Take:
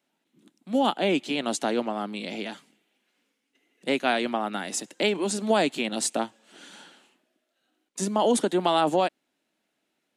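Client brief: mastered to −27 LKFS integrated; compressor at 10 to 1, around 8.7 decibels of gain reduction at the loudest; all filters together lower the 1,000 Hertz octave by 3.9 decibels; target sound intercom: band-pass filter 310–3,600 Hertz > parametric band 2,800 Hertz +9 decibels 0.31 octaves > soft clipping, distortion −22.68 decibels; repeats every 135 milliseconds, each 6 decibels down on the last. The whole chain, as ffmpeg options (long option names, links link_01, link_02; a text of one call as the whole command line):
ffmpeg -i in.wav -af "equalizer=frequency=1000:width_type=o:gain=-5.5,acompressor=threshold=-28dB:ratio=10,highpass=310,lowpass=3600,equalizer=frequency=2800:width_type=o:width=0.31:gain=9,aecho=1:1:135|270|405|540|675|810:0.501|0.251|0.125|0.0626|0.0313|0.0157,asoftclip=threshold=-20dB,volume=7.5dB" out.wav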